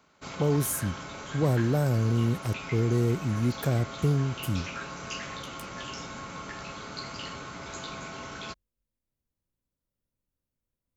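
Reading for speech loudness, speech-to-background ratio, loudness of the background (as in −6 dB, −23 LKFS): −27.5 LKFS, 11.0 dB, −38.5 LKFS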